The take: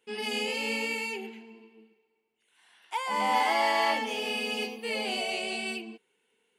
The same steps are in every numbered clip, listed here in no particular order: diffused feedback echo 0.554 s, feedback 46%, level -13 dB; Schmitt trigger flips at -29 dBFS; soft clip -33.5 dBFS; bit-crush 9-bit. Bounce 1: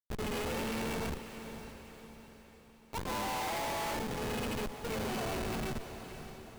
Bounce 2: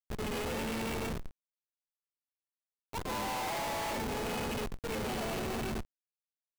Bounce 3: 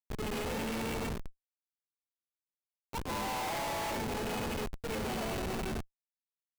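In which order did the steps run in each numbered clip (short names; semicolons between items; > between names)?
Schmitt trigger > bit-crush > diffused feedback echo > soft clip; diffused feedback echo > Schmitt trigger > bit-crush > soft clip; diffused feedback echo > bit-crush > Schmitt trigger > soft clip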